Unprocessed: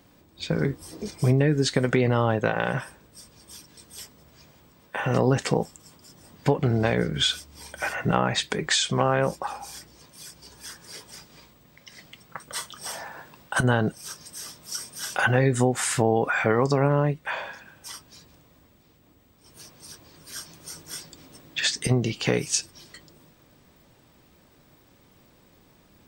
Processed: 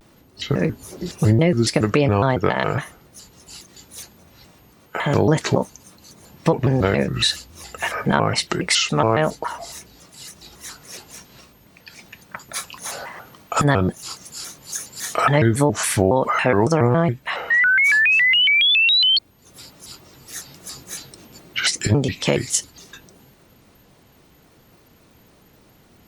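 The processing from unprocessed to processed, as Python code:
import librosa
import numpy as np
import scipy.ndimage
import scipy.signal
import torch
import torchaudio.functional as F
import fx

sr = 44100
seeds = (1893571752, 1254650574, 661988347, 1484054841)

y = fx.spec_paint(x, sr, seeds[0], shape='rise', start_s=17.49, length_s=1.69, low_hz=1600.0, high_hz=3800.0, level_db=-20.0)
y = fx.vibrato_shape(y, sr, shape='square', rate_hz=3.6, depth_cents=250.0)
y = y * 10.0 ** (4.5 / 20.0)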